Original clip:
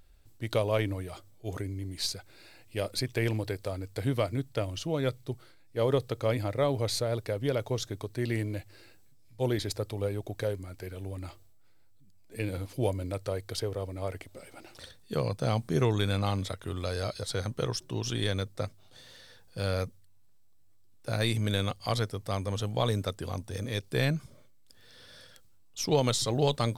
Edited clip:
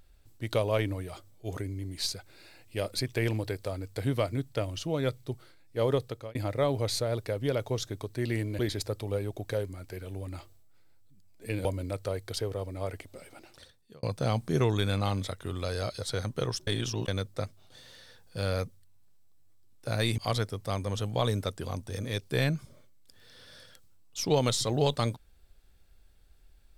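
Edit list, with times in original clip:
5.8–6.35 fade out equal-power
8.59–9.49 cut
12.55–12.86 cut
14.42–15.24 fade out
17.88–18.29 reverse
21.39–21.79 cut

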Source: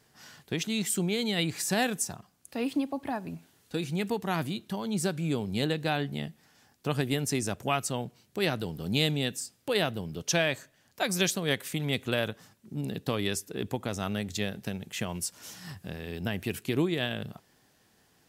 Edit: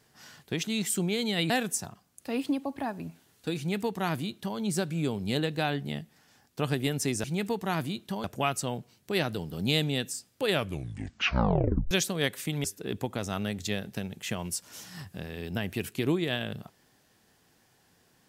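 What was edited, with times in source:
1.5–1.77 cut
3.85–4.85 copy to 7.51
9.72 tape stop 1.46 s
11.91–13.34 cut

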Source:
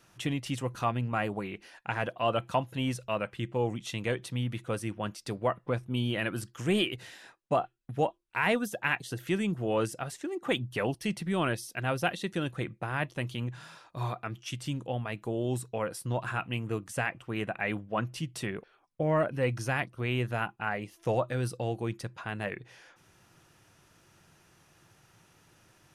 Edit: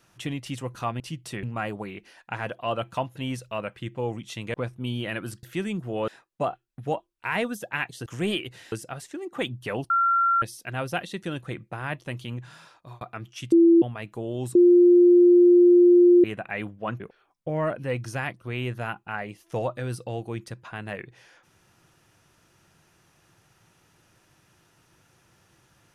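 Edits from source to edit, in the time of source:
4.11–5.64 cut
6.53–7.19 swap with 9.17–9.82
11–11.52 bleep 1370 Hz -18 dBFS
13.83–14.11 fade out
14.62–14.92 bleep 336 Hz -12 dBFS
15.65–17.34 bleep 352 Hz -11.5 dBFS
18.1–18.53 move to 1

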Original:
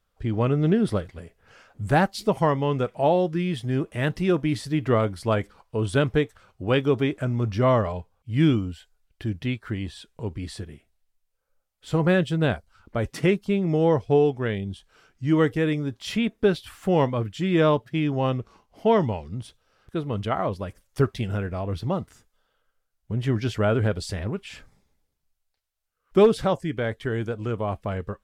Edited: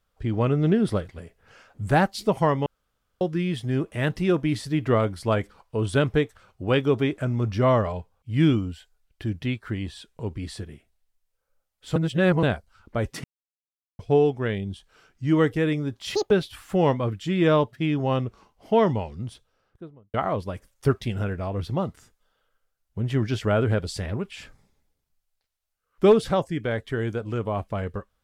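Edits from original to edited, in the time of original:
2.66–3.21 room tone
11.96–12.43 reverse
13.24–13.99 mute
16.15–16.44 speed 184%
19.35–20.27 studio fade out

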